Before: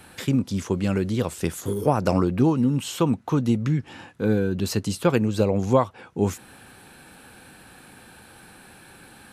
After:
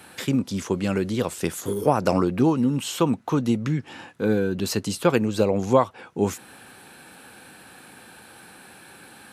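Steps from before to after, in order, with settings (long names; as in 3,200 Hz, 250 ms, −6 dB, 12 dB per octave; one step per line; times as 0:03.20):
high-pass filter 200 Hz 6 dB per octave
level +2 dB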